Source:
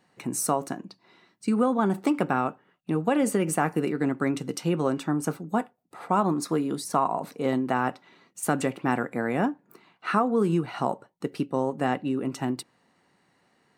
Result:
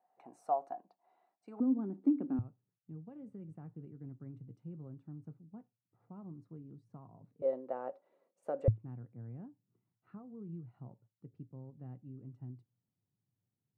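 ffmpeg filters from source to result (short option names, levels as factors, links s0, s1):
-af "asetnsamples=n=441:p=0,asendcmd='1.6 bandpass f 270;2.39 bandpass f 110;7.42 bandpass f 550;8.68 bandpass f 110',bandpass=f=730:t=q:w=8.6:csg=0"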